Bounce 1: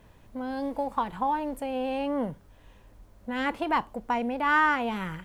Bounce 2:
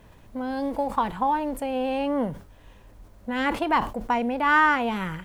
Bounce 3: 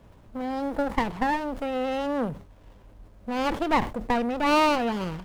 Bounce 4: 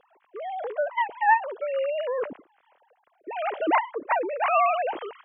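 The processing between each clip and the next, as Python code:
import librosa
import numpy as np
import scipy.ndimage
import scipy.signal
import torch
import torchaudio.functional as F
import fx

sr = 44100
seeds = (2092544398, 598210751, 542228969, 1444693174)

y1 = fx.sustainer(x, sr, db_per_s=130.0)
y1 = F.gain(torch.from_numpy(y1), 3.5).numpy()
y2 = fx.running_max(y1, sr, window=17)
y3 = fx.sine_speech(y2, sr)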